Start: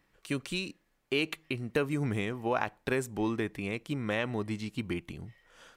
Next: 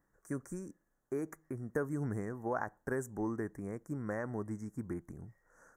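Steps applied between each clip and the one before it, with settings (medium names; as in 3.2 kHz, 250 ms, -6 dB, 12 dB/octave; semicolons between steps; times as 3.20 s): elliptic band-stop 1.7–6.2 kHz, stop band 50 dB; trim -5 dB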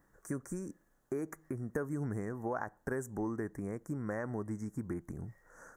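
compression 2:1, threshold -47 dBFS, peak gain reduction 10 dB; trim +7.5 dB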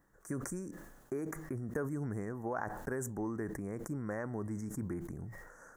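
decay stretcher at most 48 dB/s; trim -1.5 dB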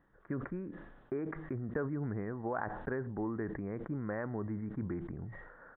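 resampled via 8 kHz; trim +1 dB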